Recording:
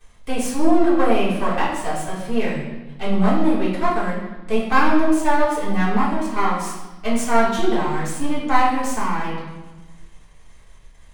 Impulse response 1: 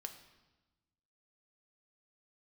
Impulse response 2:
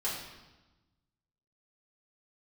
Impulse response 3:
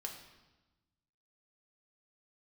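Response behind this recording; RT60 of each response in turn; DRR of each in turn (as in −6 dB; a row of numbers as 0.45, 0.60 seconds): 2; 1.1, 1.1, 1.1 seconds; 5.5, −8.5, 1.0 decibels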